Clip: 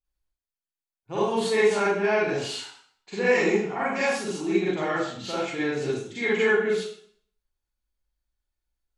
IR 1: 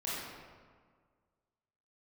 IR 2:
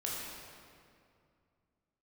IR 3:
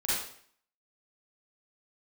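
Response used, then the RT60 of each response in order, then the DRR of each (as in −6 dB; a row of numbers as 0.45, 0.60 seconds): 3; 1.7, 2.4, 0.55 seconds; −9.0, −5.0, −10.0 decibels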